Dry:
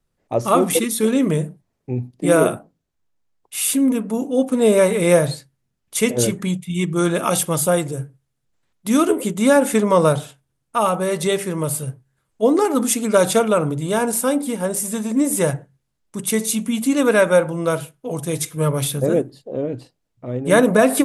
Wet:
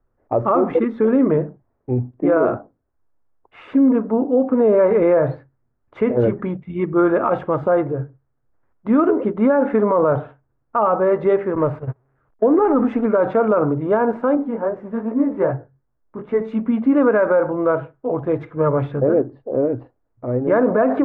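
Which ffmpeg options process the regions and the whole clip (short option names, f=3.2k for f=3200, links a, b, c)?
-filter_complex "[0:a]asettb=1/sr,asplit=3[a][b][c];[a]atrim=end=11.554[d];[b]atrim=start=11.55:end=13.06,asetpts=PTS-STARTPTS,afade=t=in:d=0.004:c=qsin,afade=t=out:st=1.506:d=0.004:c=qsin,aeval=exprs='val(0)+0.5*0.0299*sgn(val(0))':c=same,agate=range=-30dB:threshold=-25dB:ratio=16:release=100:detection=peak[e];[c]atrim=start=13.056[f];[d][e]acrossfade=d=0.004:c1=hsin:c2=qsin[g];[g][f]acrossfade=d=0.004:c1=qsin:c2=hsin,asettb=1/sr,asplit=3[h][i][j];[h]atrim=end=14.354[k];[i]atrim=start=14.35:end=16.41,asetpts=PTS-STARTPTS,afade=t=in:d=0.004:c=qsin,afade=t=out:st=2.056:d=0.004:c=qsin,highshelf=f=4.3k:g=-10,flanger=delay=16:depth=6.4:speed=2.5[l];[j]atrim=start=16.406[m];[k][l]acrossfade=d=0.004:c1=hsin:c2=qsin[n];[n][m]acrossfade=d=0.004:c1=qsin:c2=hsin,lowpass=f=1.5k:w=0.5412,lowpass=f=1.5k:w=1.3066,equalizer=f=170:w=3.1:g=-13.5,alimiter=level_in=13dB:limit=-1dB:release=50:level=0:latency=1,volume=-7dB"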